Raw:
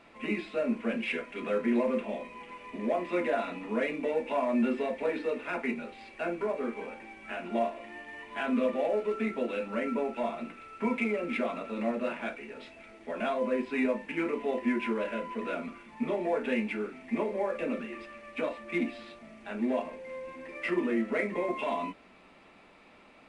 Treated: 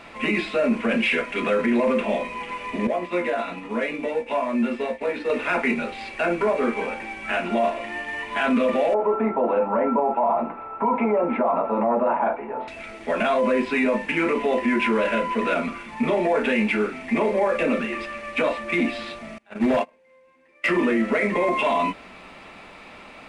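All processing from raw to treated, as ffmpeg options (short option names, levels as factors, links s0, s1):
-filter_complex "[0:a]asettb=1/sr,asplit=3[s0][s1][s2];[s0]atrim=end=2.874[s3];[s1]atrim=start=2.87:end=5.3,asetpts=PTS-STARTPTS,afade=t=in:d=0.004:c=qsin,afade=t=out:st=2.426:d=0.004:c=qsin,acompressor=threshold=0.02:ratio=3:attack=3.2:release=140:knee=1:detection=peak,agate=range=0.0224:threshold=0.02:ratio=3:release=100:detection=peak,asplit=2[s4][s5];[s5]adelay=17,volume=0.447[s6];[s4][s6]amix=inputs=2:normalize=0,atrim=end_sample=107163[s7];[s2]atrim=start=5.296[s8];[s3][s7]acrossfade=d=0.004:c1=hsin:c2=qsin[s9];[s9][s8]acrossfade=d=0.004:c1=qsin:c2=hsin,asettb=1/sr,asplit=3[s10][s11][s12];[s10]atrim=end=8.944[s13];[s11]atrim=start=8.94:end=12.68,asetpts=PTS-STARTPTS,afade=t=in:d=0.004:c=qsin,afade=t=out:st=3.736:d=0.004:c=qsin,lowpass=f=900:t=q:w=4.5,lowshelf=f=160:g=-8[s14];[s12]atrim=start=12.676[s15];[s13][s14]acrossfade=d=0.004:c1=hsin:c2=qsin[s16];[s16][s15]acrossfade=d=0.004:c1=qsin:c2=hsin,asettb=1/sr,asplit=3[s17][s18][s19];[s17]atrim=end=19.384[s20];[s18]atrim=start=19.38:end=20.68,asetpts=PTS-STARTPTS,afade=t=in:d=0.004:c=qsin,afade=t=out:st=1.296:d=0.004:c=qsin,agate=range=0.0447:threshold=0.0158:ratio=16:release=100:detection=peak,lowshelf=f=74:g=-11.5,volume=17.8,asoftclip=hard,volume=0.0562[s21];[s19]atrim=start=20.676[s22];[s20][s21]acrossfade=d=0.004:c1=hsin:c2=qsin[s23];[s23][s22]acrossfade=d=0.004:c1=qsin:c2=hsin,equalizer=f=310:t=o:w=1.7:g=-4.5,acontrast=82,alimiter=limit=0.0891:level=0:latency=1:release=15,volume=2.37"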